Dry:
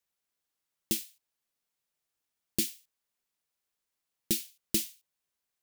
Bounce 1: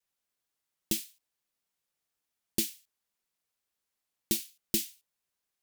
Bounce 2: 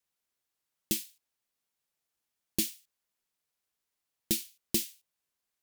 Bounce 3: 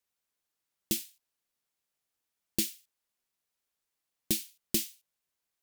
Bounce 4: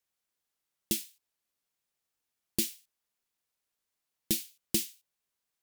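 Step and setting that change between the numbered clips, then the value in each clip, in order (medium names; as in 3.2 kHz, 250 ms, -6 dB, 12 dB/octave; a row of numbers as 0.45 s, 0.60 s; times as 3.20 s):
vibrato, rate: 0.93 Hz, 3 Hz, 6.4 Hz, 12 Hz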